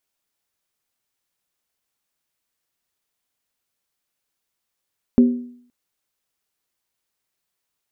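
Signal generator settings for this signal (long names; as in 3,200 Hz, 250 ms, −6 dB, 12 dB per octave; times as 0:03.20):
struck skin length 0.52 s, lowest mode 244 Hz, decay 0.60 s, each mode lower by 11.5 dB, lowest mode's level −6.5 dB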